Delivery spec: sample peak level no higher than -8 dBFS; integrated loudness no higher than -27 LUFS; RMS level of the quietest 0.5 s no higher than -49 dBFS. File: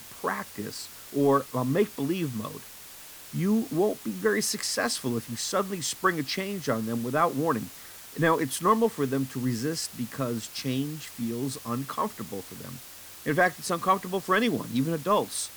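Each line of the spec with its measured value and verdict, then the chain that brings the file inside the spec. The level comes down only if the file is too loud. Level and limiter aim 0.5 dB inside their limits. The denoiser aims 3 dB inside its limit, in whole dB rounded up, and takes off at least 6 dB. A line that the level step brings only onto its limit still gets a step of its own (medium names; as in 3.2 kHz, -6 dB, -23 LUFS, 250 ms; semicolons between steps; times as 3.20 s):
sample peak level -9.5 dBFS: pass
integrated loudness -28.0 LUFS: pass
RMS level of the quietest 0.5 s -46 dBFS: fail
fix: noise reduction 6 dB, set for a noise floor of -46 dBFS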